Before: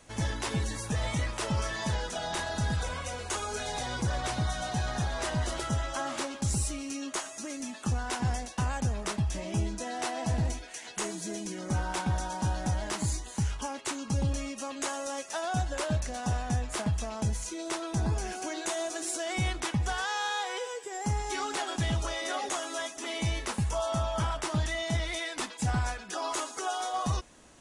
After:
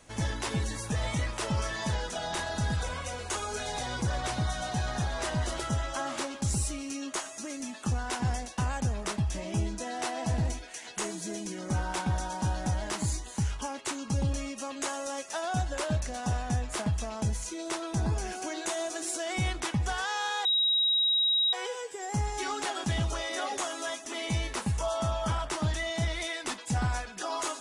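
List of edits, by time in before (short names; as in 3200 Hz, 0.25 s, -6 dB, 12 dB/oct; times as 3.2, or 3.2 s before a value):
20.45 add tone 3820 Hz -22.5 dBFS 1.08 s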